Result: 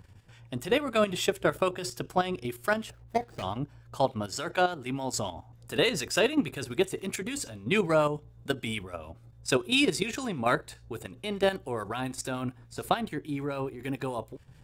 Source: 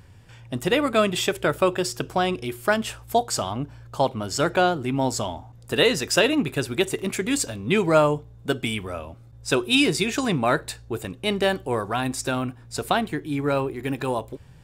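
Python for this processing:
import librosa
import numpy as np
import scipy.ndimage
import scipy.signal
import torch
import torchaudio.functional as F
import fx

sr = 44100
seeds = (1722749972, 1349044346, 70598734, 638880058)

y = fx.median_filter(x, sr, points=41, at=(2.9, 3.43))
y = fx.low_shelf(y, sr, hz=430.0, db=-6.0, at=(4.32, 5.13))
y = fx.level_steps(y, sr, step_db=10)
y = fx.harmonic_tremolo(y, sr, hz=6.9, depth_pct=50, crossover_hz=1200.0)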